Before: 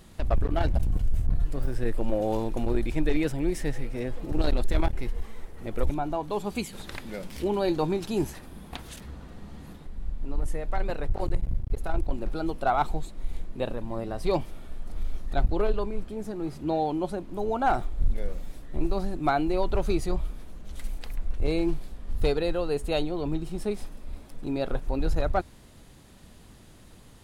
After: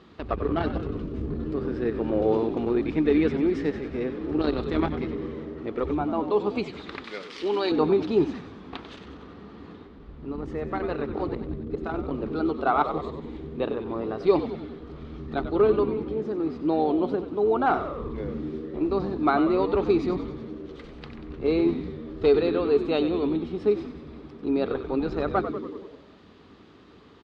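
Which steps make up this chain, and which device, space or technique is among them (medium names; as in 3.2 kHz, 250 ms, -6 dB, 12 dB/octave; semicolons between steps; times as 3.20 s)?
frequency-shifting delay pedal into a guitar cabinet (frequency-shifting echo 94 ms, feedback 64%, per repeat -82 Hz, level -10 dB; cabinet simulation 98–4400 Hz, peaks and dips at 130 Hz -9 dB, 290 Hz +6 dB, 420 Hz +9 dB, 600 Hz -3 dB, 1.2 kHz +8 dB); 7.04–7.72 s: tilt EQ +4 dB/octave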